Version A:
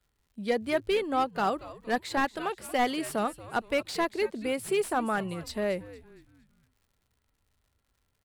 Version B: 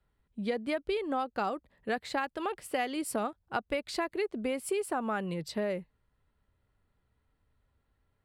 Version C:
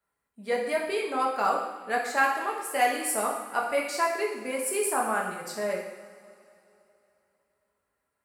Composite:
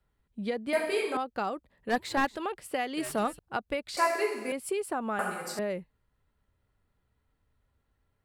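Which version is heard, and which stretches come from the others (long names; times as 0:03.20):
B
0:00.73–0:01.17: punch in from C
0:01.89–0:02.37: punch in from A
0:02.97–0:03.39: punch in from A
0:03.97–0:04.52: punch in from C
0:05.19–0:05.59: punch in from C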